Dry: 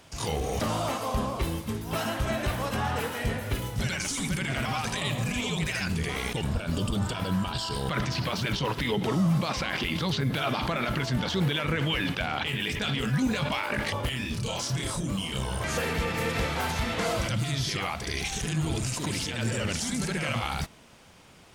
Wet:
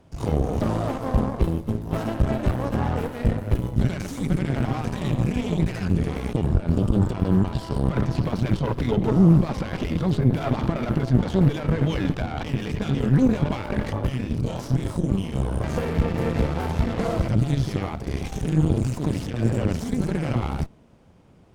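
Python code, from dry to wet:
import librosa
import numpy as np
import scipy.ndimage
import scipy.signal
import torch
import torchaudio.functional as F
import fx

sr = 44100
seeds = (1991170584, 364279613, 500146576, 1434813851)

y = fx.cheby_harmonics(x, sr, harmonics=(2, 3, 6, 7), levels_db=(-8, -21, -24, -30), full_scale_db=-17.5)
y = fx.tilt_shelf(y, sr, db=10.0, hz=970.0)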